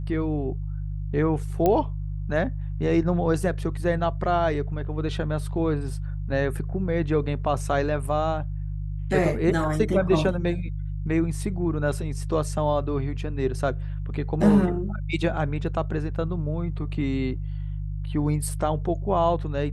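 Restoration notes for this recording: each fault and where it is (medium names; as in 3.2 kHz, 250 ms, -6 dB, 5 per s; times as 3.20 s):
hum 50 Hz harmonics 3 -30 dBFS
1.66 s: pop -10 dBFS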